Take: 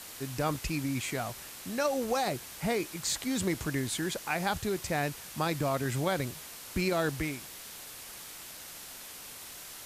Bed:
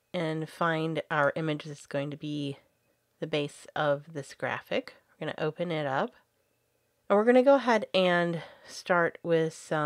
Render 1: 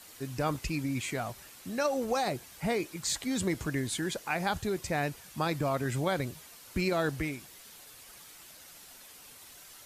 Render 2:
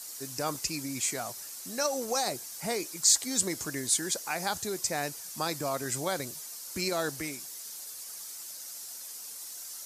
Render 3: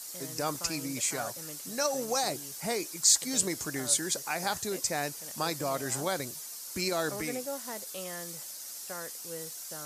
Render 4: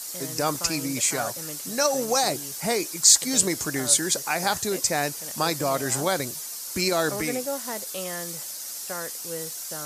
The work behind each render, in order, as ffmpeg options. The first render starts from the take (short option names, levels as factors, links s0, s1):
-af "afftdn=nr=8:nf=-46"
-af "highpass=f=340:p=1,highshelf=f=4100:t=q:w=1.5:g=9.5"
-filter_complex "[1:a]volume=0.141[s0];[0:a][s0]amix=inputs=2:normalize=0"
-af "volume=2.24"